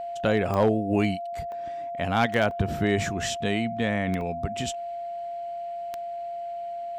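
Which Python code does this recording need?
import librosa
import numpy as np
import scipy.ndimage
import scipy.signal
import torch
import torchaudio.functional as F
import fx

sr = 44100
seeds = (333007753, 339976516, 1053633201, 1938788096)

y = fx.fix_declip(x, sr, threshold_db=-13.0)
y = fx.fix_declick_ar(y, sr, threshold=10.0)
y = fx.notch(y, sr, hz=690.0, q=30.0)
y = fx.fix_interpolate(y, sr, at_s=(1.52, 2.51, 4.21), length_ms=1.8)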